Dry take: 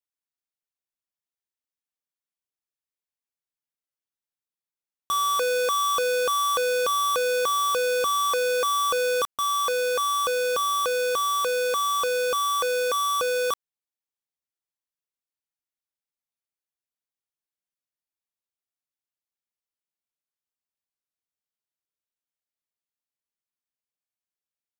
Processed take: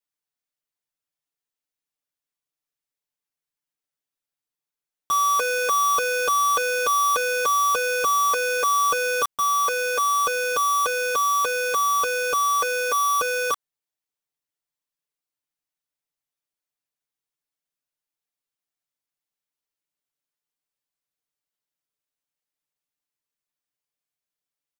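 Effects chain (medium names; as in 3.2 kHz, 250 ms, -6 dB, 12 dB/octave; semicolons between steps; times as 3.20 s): comb 6.8 ms, depth 96%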